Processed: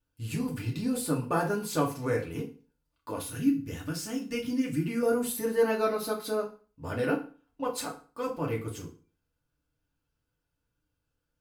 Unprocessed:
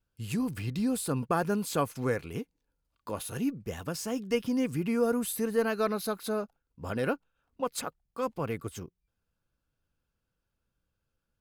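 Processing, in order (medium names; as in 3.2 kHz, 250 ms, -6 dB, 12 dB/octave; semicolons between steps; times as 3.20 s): 3.22–5.03 s: high-order bell 680 Hz -8 dB; FDN reverb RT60 0.38 s, low-frequency decay 1.1×, high-frequency decay 0.9×, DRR -2 dB; trim -3.5 dB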